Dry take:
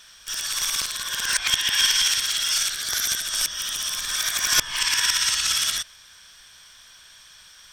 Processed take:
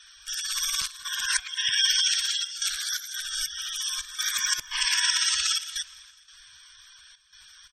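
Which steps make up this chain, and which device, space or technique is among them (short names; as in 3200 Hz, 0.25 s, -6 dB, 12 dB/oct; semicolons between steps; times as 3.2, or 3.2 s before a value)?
spectral gate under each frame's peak -15 dB strong; 3.14–3.76 high shelf 5200 Hz -6 dB; trance gate with a delay (step gate "xxxxx.xx." 86 bpm -12 dB; feedback echo 0.207 s, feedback 53%, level -22 dB); gain -1.5 dB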